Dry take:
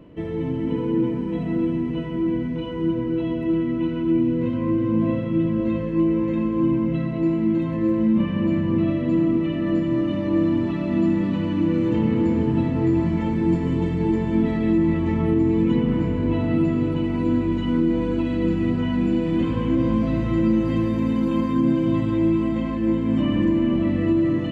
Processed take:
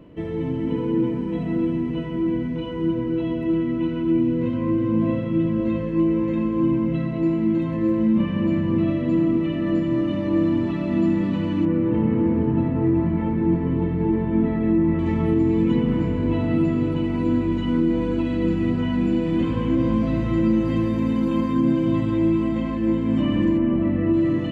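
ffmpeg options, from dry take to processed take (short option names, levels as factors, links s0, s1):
-filter_complex "[0:a]asettb=1/sr,asplit=3[s0][s1][s2];[s0]atrim=end=11.654[s3];[s1]atrim=start=11.65:end=14.99,asetpts=PTS-STARTPTS,afade=t=in:d=0.004:c=qsin,afade=t=out:st=3.336:d=0.004:c=qsin,lowpass=1900[s4];[s2]atrim=start=14.986[s5];[s3][s4]acrossfade=d=0.004:c1=hsin:c2=qsin[s6];[s6][s5]acrossfade=d=0.004:c1=qsin:c2=hsin,asplit=3[s7][s8][s9];[s7]afade=t=out:st=23.57:d=0.02[s10];[s8]lowpass=2100,afade=t=in:st=23.57:d=0.02,afade=t=out:st=24.12:d=0.02[s11];[s9]afade=t=in:st=24.12:d=0.02[s12];[s10][s11][s12]amix=inputs=3:normalize=0"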